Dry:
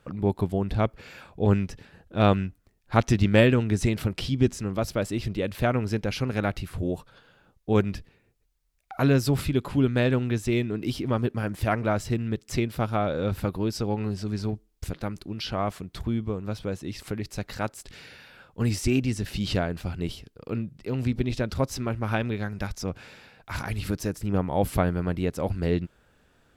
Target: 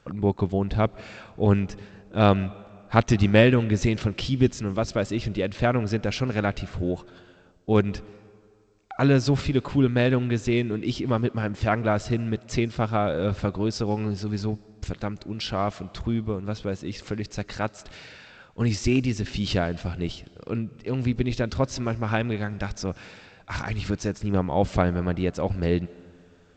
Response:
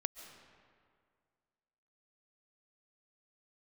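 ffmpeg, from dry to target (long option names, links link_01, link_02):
-filter_complex "[0:a]asplit=2[link_01][link_02];[1:a]atrim=start_sample=2205,lowshelf=frequency=150:gain=-6.5[link_03];[link_02][link_03]afir=irnorm=-1:irlink=0,volume=-10dB[link_04];[link_01][link_04]amix=inputs=2:normalize=0" -ar 16000 -c:a g722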